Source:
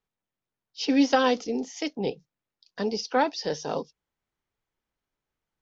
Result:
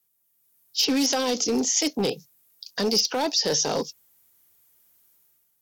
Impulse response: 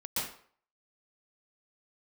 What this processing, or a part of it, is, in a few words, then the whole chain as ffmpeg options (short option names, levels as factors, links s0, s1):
FM broadcast chain: -filter_complex "[0:a]highpass=69,dynaudnorm=f=100:g=9:m=2.99,acrossover=split=990|3500[s0][s1][s2];[s0]acompressor=threshold=0.158:ratio=4[s3];[s1]acompressor=threshold=0.0251:ratio=4[s4];[s2]acompressor=threshold=0.02:ratio=4[s5];[s3][s4][s5]amix=inputs=3:normalize=0,aemphasis=mode=production:type=50fm,alimiter=limit=0.178:level=0:latency=1:release=18,asoftclip=type=hard:threshold=0.119,lowpass=f=15000:w=0.5412,lowpass=f=15000:w=1.3066,aemphasis=mode=production:type=50fm"